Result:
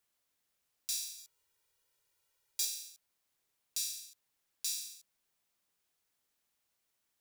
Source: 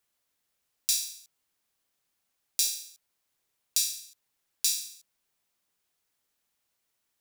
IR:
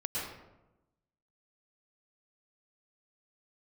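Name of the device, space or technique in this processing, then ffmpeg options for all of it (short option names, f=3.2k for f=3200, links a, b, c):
soft clipper into limiter: -filter_complex "[0:a]asettb=1/sr,asplit=3[a][b][c];[a]atrim=end=1.184[d];[b]atrim=start=1.18:end=2.65,asetpts=PTS-STARTPTS,afade=t=in:d=0.004:c=qsin,afade=t=out:st=1.466:d=0.004:c=qsin,aecho=1:1:2.1:1,atrim=end_sample=64827[e];[c]atrim=start=2.646[f];[d][e]acrossfade=d=0.004:c1=hsin:c2=qsin[g];[g][f]acrossfade=d=0.004:c1=qsin:c2=hsin,asoftclip=type=tanh:threshold=-11dB,alimiter=limit=-19.5dB:level=0:latency=1:release=269,volume=-2.5dB"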